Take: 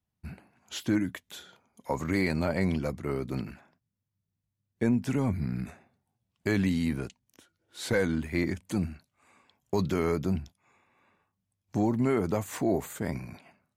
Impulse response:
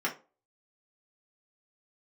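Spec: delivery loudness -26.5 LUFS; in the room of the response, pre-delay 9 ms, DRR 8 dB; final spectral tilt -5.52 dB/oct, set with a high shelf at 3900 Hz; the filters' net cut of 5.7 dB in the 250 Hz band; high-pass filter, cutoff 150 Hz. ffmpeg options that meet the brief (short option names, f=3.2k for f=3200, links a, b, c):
-filter_complex "[0:a]highpass=150,equalizer=f=250:t=o:g=-6.5,highshelf=f=3.9k:g=-6,asplit=2[a][b];[1:a]atrim=start_sample=2205,adelay=9[c];[b][c]afir=irnorm=-1:irlink=0,volume=-16dB[d];[a][d]amix=inputs=2:normalize=0,volume=7.5dB"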